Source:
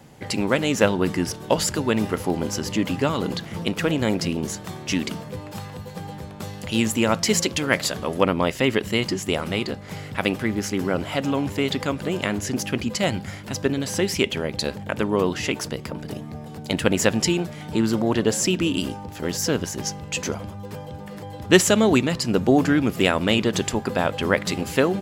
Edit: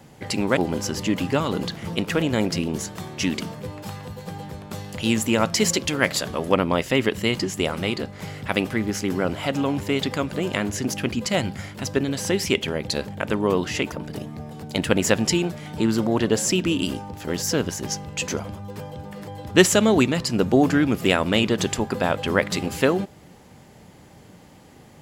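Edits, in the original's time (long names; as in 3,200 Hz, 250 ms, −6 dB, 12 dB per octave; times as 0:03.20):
0:00.57–0:02.26: remove
0:15.61–0:15.87: remove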